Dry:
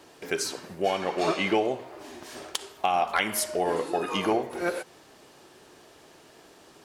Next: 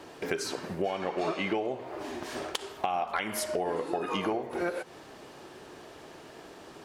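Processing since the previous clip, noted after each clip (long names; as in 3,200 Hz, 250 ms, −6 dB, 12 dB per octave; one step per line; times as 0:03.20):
high-shelf EQ 3,900 Hz −8.5 dB
downward compressor 4 to 1, threshold −35 dBFS, peak gain reduction 13 dB
level +6 dB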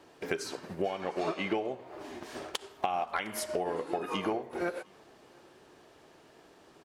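single-tap delay 708 ms −22 dB
expander for the loud parts 1.5 to 1, over −45 dBFS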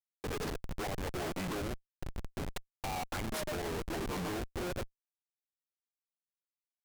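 harmonic generator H 7 −9 dB, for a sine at −12 dBFS
comparator with hysteresis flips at −32.5 dBFS
pitch vibrato 0.44 Hz 92 cents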